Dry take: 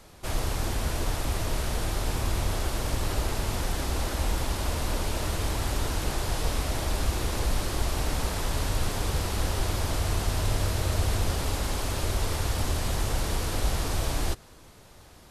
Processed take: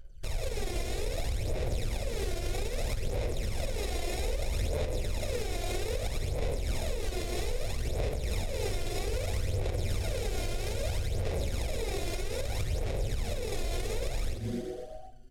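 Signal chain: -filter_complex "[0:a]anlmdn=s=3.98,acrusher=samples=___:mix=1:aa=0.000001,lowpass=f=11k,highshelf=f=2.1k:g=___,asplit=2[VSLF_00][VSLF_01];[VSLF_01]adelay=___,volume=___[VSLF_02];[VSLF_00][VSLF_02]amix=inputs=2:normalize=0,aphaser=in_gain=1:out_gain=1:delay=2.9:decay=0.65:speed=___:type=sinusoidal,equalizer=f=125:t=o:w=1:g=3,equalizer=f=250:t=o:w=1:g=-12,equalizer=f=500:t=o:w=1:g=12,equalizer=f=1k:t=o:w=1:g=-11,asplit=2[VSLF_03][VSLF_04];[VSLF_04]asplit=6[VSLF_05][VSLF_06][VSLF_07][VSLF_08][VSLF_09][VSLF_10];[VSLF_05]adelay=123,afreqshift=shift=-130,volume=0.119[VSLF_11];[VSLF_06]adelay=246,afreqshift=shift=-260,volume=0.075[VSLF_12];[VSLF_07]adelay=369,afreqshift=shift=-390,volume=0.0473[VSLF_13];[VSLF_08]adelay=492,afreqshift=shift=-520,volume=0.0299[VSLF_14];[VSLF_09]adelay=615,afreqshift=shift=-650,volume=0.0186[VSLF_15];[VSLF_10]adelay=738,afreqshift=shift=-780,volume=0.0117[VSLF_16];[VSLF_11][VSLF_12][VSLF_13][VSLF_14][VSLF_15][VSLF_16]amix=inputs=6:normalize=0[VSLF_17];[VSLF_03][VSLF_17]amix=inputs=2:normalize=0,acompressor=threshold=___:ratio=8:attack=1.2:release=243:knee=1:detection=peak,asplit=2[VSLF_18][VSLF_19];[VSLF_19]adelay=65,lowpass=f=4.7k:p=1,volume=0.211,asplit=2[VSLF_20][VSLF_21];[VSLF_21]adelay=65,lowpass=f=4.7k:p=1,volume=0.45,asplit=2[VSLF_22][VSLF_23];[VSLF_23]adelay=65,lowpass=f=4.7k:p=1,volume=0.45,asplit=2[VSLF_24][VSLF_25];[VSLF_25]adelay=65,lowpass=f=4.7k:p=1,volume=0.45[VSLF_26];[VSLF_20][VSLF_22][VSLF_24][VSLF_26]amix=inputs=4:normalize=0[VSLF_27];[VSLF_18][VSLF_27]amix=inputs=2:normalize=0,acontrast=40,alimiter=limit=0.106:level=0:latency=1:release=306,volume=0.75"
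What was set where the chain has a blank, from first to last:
29, 9.5, 45, 0.447, 0.62, 0.0447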